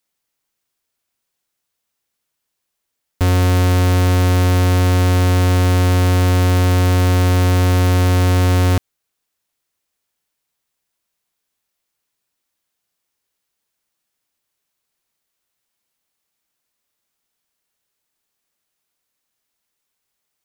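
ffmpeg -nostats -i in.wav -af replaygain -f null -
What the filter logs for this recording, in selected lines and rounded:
track_gain = +3.4 dB
track_peak = 0.157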